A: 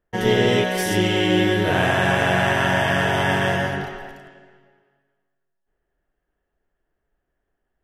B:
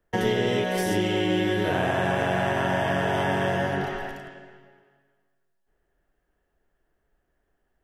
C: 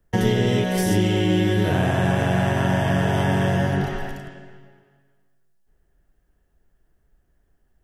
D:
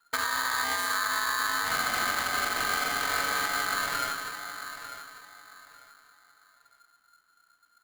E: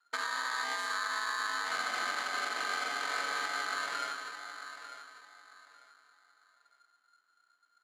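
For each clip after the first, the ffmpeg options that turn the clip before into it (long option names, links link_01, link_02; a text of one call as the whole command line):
ffmpeg -i in.wav -filter_complex "[0:a]acrossover=split=190|1000[link_01][link_02][link_03];[link_01]acompressor=threshold=-37dB:ratio=4[link_04];[link_02]acompressor=threshold=-27dB:ratio=4[link_05];[link_03]acompressor=threshold=-36dB:ratio=4[link_06];[link_04][link_05][link_06]amix=inputs=3:normalize=0,volume=3dB" out.wav
ffmpeg -i in.wav -af "bass=frequency=250:gain=11,treble=frequency=4000:gain=6" out.wav
ffmpeg -i in.wav -filter_complex "[0:a]alimiter=limit=-17dB:level=0:latency=1:release=180,asplit=2[link_01][link_02];[link_02]adelay=896,lowpass=frequency=1700:poles=1,volume=-11dB,asplit=2[link_03][link_04];[link_04]adelay=896,lowpass=frequency=1700:poles=1,volume=0.28,asplit=2[link_05][link_06];[link_06]adelay=896,lowpass=frequency=1700:poles=1,volume=0.28[link_07];[link_03][link_05][link_07]amix=inputs=3:normalize=0[link_08];[link_01][link_08]amix=inputs=2:normalize=0,aeval=exprs='val(0)*sgn(sin(2*PI*1400*n/s))':channel_layout=same,volume=-3.5dB" out.wav
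ffmpeg -i in.wav -af "highpass=310,lowpass=6800,volume=-5.5dB" out.wav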